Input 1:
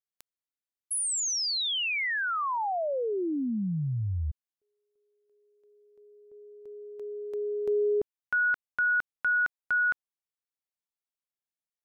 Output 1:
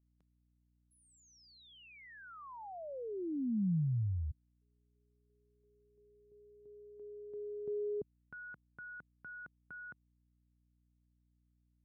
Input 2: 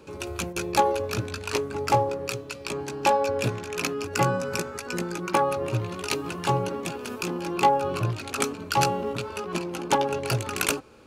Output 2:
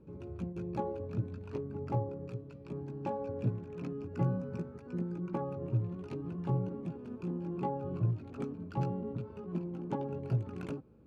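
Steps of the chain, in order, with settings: band-pass 150 Hz, Q 1.5; dynamic EQ 140 Hz, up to -3 dB, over -41 dBFS, Q 3.3; hum 60 Hz, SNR 32 dB

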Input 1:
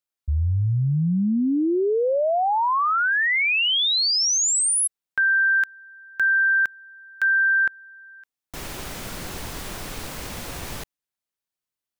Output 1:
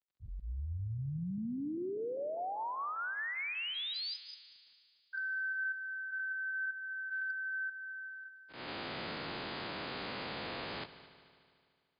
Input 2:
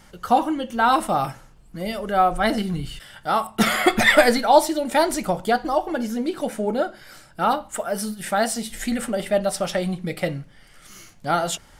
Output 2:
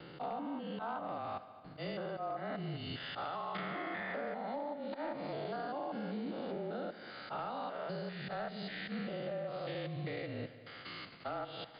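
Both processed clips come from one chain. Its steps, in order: stepped spectrum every 0.2 s; treble ducked by the level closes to 1600 Hz, closed at -18.5 dBFS; HPF 220 Hz 12 dB/oct; gate with hold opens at -44 dBFS, closes at -47 dBFS, hold 16 ms, range -21 dB; vocal rider within 4 dB 0.5 s; auto swell 0.13 s; compressor 8:1, threshold -38 dBFS; crackle 58/s -70 dBFS; hard clip -33 dBFS; frequency shift -30 Hz; multi-head echo 74 ms, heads all three, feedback 62%, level -21 dB; gain +1 dB; MP3 56 kbps 11025 Hz

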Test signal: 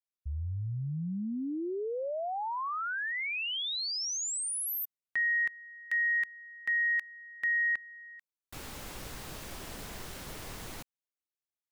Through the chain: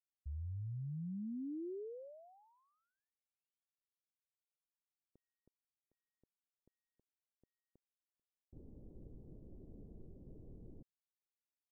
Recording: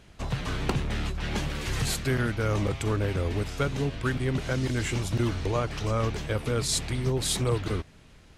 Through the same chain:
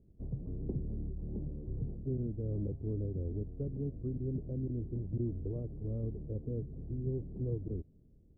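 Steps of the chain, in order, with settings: inverse Chebyshev low-pass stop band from 1900 Hz, stop band 70 dB; gain -8 dB

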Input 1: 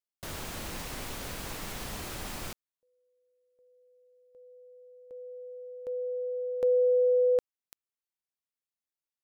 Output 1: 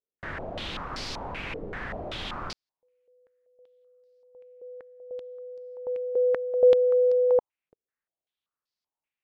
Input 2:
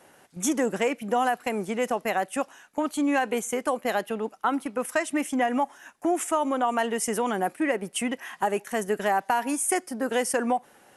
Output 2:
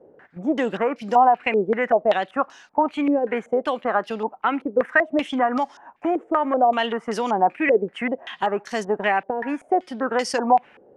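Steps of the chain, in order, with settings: stepped low-pass 5.2 Hz 460–4800 Hz; gain +1.5 dB

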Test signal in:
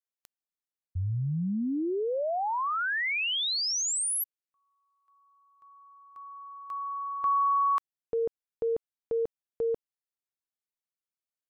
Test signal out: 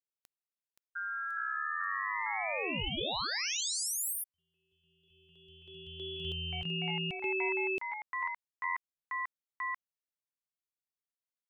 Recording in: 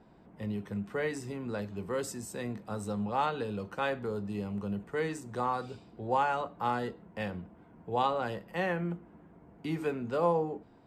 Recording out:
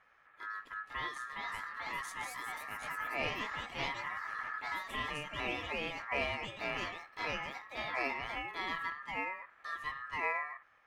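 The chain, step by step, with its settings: echoes that change speed 0.564 s, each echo +3 st, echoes 3; ring modulator 1500 Hz; gain -5 dB

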